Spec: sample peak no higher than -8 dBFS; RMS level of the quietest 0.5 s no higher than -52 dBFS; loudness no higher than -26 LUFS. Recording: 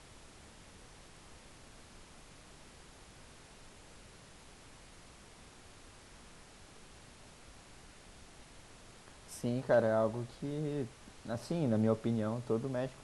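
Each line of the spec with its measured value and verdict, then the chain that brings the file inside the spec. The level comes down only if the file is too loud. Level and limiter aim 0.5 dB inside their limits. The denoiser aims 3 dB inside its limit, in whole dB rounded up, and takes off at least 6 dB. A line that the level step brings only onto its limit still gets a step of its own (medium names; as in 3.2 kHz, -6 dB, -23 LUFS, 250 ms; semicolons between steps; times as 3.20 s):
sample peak -17.0 dBFS: pass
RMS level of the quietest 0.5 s -56 dBFS: pass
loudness -34.5 LUFS: pass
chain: none needed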